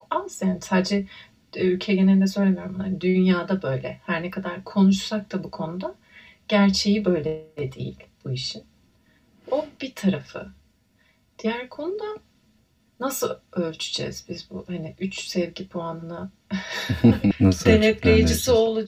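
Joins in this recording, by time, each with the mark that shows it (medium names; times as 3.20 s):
17.31 s: sound stops dead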